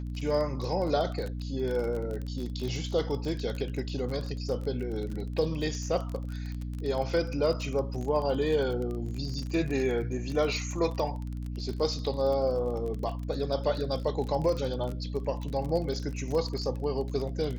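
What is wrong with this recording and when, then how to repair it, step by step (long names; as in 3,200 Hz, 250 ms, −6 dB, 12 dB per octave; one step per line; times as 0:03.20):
surface crackle 30 per second −33 dBFS
mains hum 60 Hz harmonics 5 −35 dBFS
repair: click removal
hum removal 60 Hz, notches 5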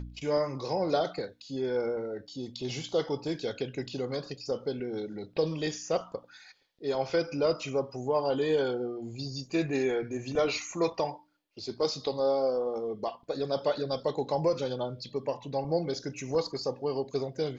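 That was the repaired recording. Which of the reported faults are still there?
none of them is left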